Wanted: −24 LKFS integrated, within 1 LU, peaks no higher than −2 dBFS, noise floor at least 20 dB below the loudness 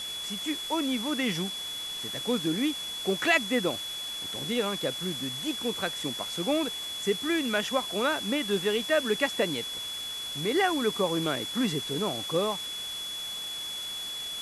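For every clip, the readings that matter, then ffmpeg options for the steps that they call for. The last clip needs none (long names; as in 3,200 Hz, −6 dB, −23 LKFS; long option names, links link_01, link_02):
interfering tone 3,400 Hz; level of the tone −34 dBFS; background noise floor −36 dBFS; target noise floor −49 dBFS; integrated loudness −29.0 LKFS; sample peak −10.0 dBFS; target loudness −24.0 LKFS
→ -af "bandreject=frequency=3400:width=30"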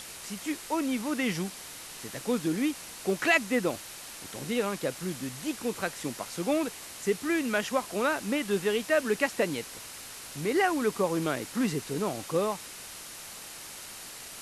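interfering tone none found; background noise floor −44 dBFS; target noise floor −50 dBFS
→ -af "afftdn=noise_reduction=6:noise_floor=-44"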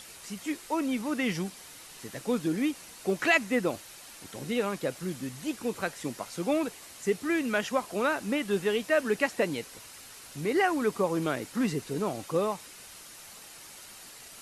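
background noise floor −48 dBFS; target noise floor −50 dBFS
→ -af "afftdn=noise_reduction=6:noise_floor=-48"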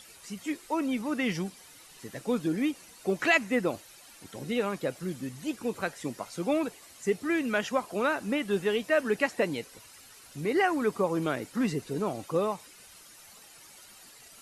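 background noise floor −53 dBFS; integrated loudness −30.0 LKFS; sample peak −10.5 dBFS; target loudness −24.0 LKFS
→ -af "volume=6dB"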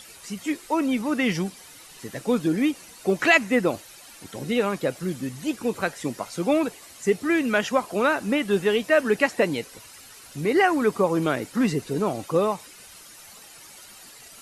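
integrated loudness −24.0 LKFS; sample peak −4.5 dBFS; background noise floor −47 dBFS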